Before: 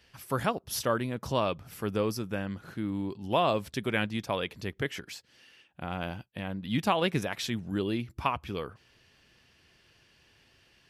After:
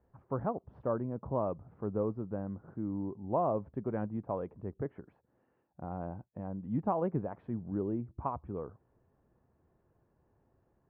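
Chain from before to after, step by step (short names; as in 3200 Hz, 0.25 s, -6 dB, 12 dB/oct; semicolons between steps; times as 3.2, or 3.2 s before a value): LPF 1000 Hz 24 dB/oct; gain -3.5 dB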